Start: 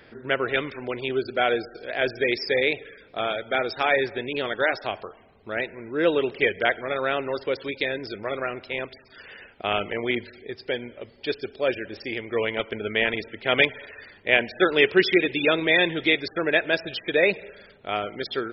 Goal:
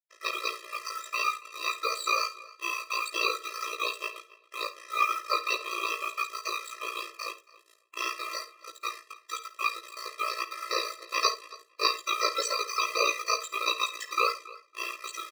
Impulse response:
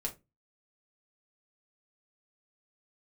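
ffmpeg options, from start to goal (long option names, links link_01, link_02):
-filter_complex "[0:a]equalizer=frequency=4600:width=5.2:gain=6,aecho=1:1:4.2:0.42,aeval=exprs='val(0)*sin(2*PI*1500*n/s)':channel_layout=same,asetrate=53361,aresample=44100,aeval=exprs='val(0)*sin(2*PI*29*n/s)':channel_layout=same,acrusher=bits=5:mix=0:aa=0.5,flanger=delay=15.5:depth=3.5:speed=1.6,asplit=2[link_01][link_02];[link_02]adelay=277,lowpass=frequency=4400:poles=1,volume=-19.5dB,asplit=2[link_03][link_04];[link_04]adelay=277,lowpass=frequency=4400:poles=1,volume=0.17[link_05];[link_01][link_03][link_05]amix=inputs=3:normalize=0,asplit=2[link_06][link_07];[1:a]atrim=start_sample=2205,adelay=53[link_08];[link_07][link_08]afir=irnorm=-1:irlink=0,volume=-14dB[link_09];[link_06][link_09]amix=inputs=2:normalize=0,afftfilt=real='re*eq(mod(floor(b*sr/1024/340),2),1)':imag='im*eq(mod(floor(b*sr/1024/340),2),1)':win_size=1024:overlap=0.75,volume=4dB"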